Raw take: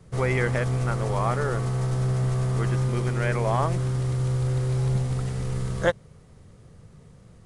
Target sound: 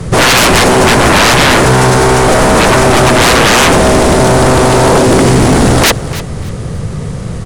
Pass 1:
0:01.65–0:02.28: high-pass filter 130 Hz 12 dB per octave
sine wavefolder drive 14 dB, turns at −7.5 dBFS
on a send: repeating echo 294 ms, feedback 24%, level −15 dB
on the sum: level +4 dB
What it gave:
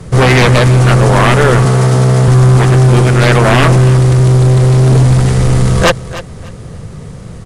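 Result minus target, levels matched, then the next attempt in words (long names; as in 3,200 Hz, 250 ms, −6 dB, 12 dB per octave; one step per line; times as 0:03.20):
sine wavefolder: distortion −30 dB
0:01.65–0:02.28: high-pass filter 130 Hz 12 dB per octave
sine wavefolder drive 23 dB, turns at −7.5 dBFS
on a send: repeating echo 294 ms, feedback 24%, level −15 dB
on the sum: level +4 dB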